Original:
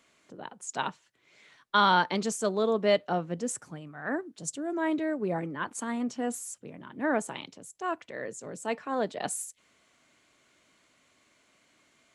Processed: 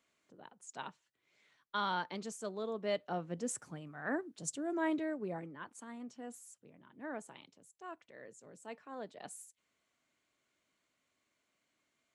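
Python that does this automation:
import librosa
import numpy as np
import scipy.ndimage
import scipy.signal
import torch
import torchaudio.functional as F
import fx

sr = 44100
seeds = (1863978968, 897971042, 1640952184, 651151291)

y = fx.gain(x, sr, db=fx.line((2.75, -13.0), (3.59, -4.5), (4.84, -4.5), (5.76, -15.5)))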